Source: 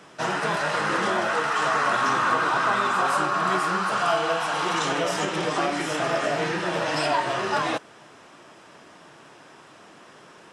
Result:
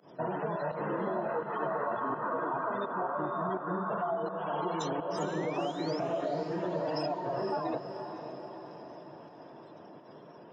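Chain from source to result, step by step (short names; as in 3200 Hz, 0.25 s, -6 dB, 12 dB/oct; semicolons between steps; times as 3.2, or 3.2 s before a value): notch 800 Hz, Q 13; spectral gate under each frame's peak -15 dB strong; band shelf 1900 Hz -13 dB; compressor, threshold -30 dBFS, peak gain reduction 9 dB; painted sound rise, 4.95–6, 840–5500 Hz -48 dBFS; pump 84 bpm, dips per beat 1, -20 dB, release 0.124 s; diffused feedback echo 0.51 s, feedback 56%, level -8.5 dB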